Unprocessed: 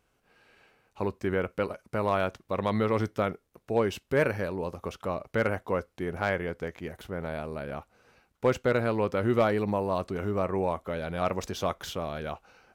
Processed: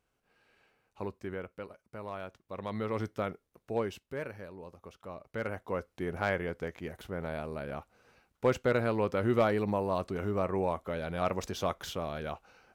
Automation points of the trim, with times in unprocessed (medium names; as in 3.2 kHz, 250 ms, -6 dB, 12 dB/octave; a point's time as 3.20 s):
1.04 s -7.5 dB
1.65 s -14 dB
2.28 s -14 dB
3.04 s -6 dB
3.78 s -6 dB
4.22 s -14 dB
4.96 s -14 dB
6.02 s -2.5 dB